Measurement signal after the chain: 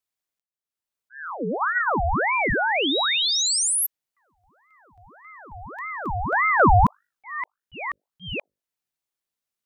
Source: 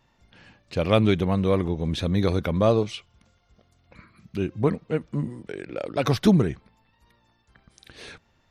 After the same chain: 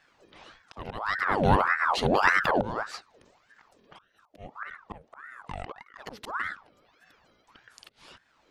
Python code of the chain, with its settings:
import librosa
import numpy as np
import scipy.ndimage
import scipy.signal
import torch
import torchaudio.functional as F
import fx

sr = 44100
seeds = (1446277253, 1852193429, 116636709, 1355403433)

y = fx.auto_swell(x, sr, attack_ms=586.0)
y = fx.hum_notches(y, sr, base_hz=50, count=5)
y = fx.ring_lfo(y, sr, carrier_hz=1000.0, swing_pct=70, hz=1.7)
y = y * 10.0 ** (4.0 / 20.0)